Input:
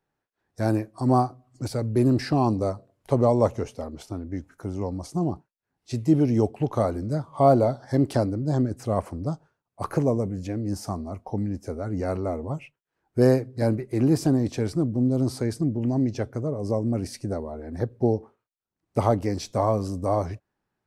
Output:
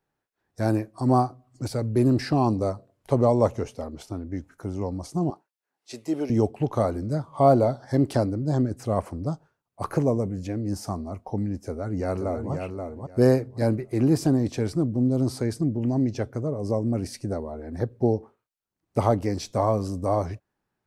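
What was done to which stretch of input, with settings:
5.3–6.3 HPF 440 Hz
11.64–12.53 echo throw 0.53 s, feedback 20%, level -5.5 dB

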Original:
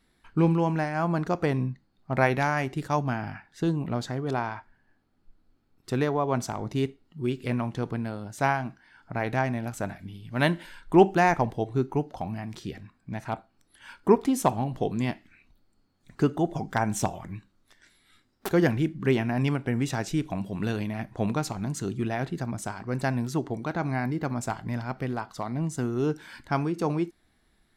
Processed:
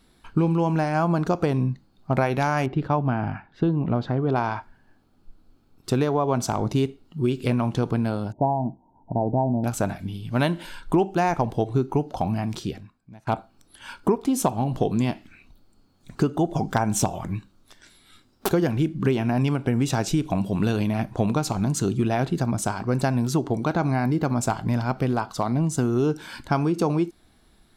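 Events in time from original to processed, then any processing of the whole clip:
2.66–4.36 air absorption 350 m
8.32–9.64 rippled Chebyshev low-pass 960 Hz, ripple 3 dB
12.57–13.27 fade out quadratic, to -23 dB
whole clip: bell 1900 Hz -8 dB 0.45 oct; compressor 6:1, threshold -27 dBFS; gain +9 dB

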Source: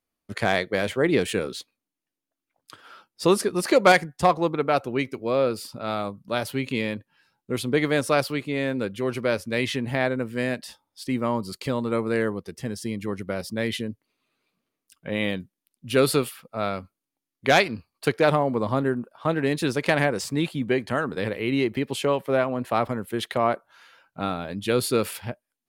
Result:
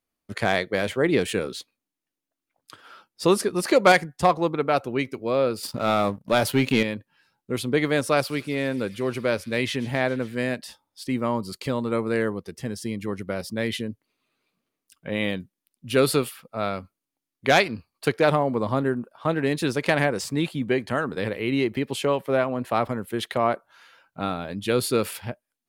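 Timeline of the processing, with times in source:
5.63–6.83 sample leveller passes 2
8.02–10.35 thin delay 0.136 s, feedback 81%, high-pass 3000 Hz, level -16.5 dB

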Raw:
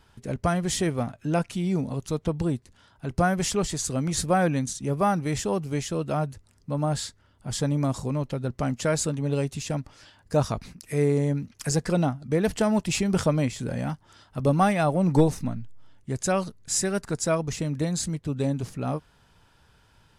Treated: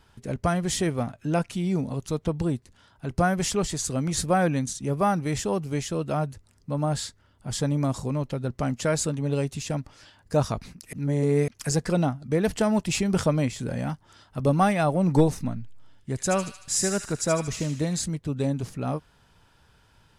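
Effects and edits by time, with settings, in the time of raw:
10.93–11.48 reverse
15.59–18 thin delay 76 ms, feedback 54%, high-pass 2100 Hz, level -5 dB

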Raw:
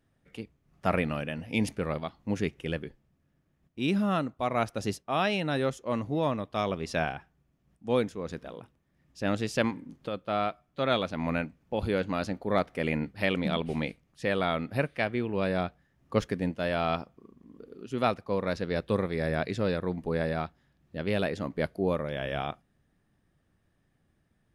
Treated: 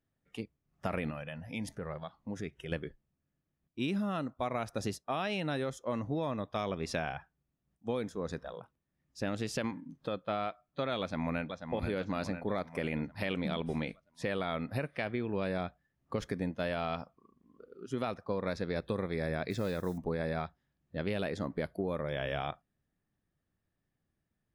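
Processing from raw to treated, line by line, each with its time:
1.1–2.72 compressor 2:1, threshold -41 dBFS
11–11.6 echo throw 0.49 s, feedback 60%, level -8 dB
19.5–19.98 modulation noise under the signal 25 dB
whole clip: spectral noise reduction 12 dB; limiter -19 dBFS; compressor, threshold -30 dBFS

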